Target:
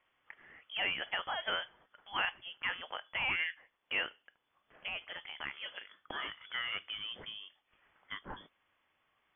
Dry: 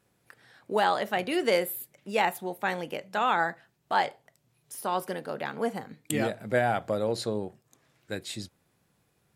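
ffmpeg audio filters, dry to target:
-filter_complex "[0:a]asplit=2[s0][s1];[s1]acompressor=threshold=0.0126:ratio=6,volume=1.26[s2];[s0][s2]amix=inputs=2:normalize=0,asoftclip=type=tanh:threshold=0.266,aderivative,lowpass=f=3100:t=q:w=0.5098,lowpass=f=3100:t=q:w=0.6013,lowpass=f=3100:t=q:w=0.9,lowpass=f=3100:t=q:w=2.563,afreqshift=-3600,asettb=1/sr,asplit=3[s3][s4][s5];[s3]atrim=end=4.884[s6];[s4]atrim=start=4.88:end=6.72,asetpts=PTS-STARTPTS,afade=t=in:d=0.004:c=qsin,afade=t=out:st=1.836:d=0.004:c=qsin,acrossover=split=2800[s7][s8];[s8]acompressor=threshold=0.002:ratio=4:attack=1:release=60[s9];[s7][s9]amix=inputs=2:normalize=0[s10];[s5]atrim=start=6.716[s11];[s6][s10]acrossfade=d=0.004:c1=hsin:c2=qsin[s12];[s12][s11]acrossfade=d=0.004:c1=qsin:c2=hsin,volume=2.11"

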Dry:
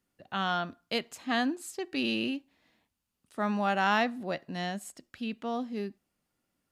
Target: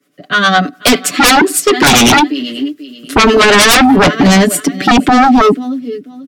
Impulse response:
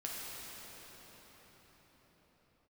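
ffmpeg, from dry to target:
-filter_complex "[0:a]highpass=f=170:w=0.5412,highpass=f=170:w=1.3066,highshelf=f=5000:g=-5.5,aecho=1:1:7.4:0.96,asubboost=boost=10:cutoff=230,acrossover=split=240[s0][s1];[s1]dynaudnorm=f=140:g=11:m=4.22[s2];[s0][s2]amix=inputs=2:normalize=0,asuperstop=centerf=830:order=8:qfactor=3.4,asetrate=47187,aresample=44100,acrossover=split=450[s3][s4];[s3]aeval=exprs='val(0)*(1-0.7/2+0.7/2*cos(2*PI*9.8*n/s))':c=same[s5];[s4]aeval=exprs='val(0)*(1-0.7/2-0.7/2*cos(2*PI*9.8*n/s))':c=same[s6];[s5][s6]amix=inputs=2:normalize=0,asplit=2[s7][s8];[s8]aecho=0:1:488|976:0.0708|0.017[s9];[s7][s9]amix=inputs=2:normalize=0,aeval=exprs='0.668*sin(PI/2*7.94*val(0)/0.668)':c=same"

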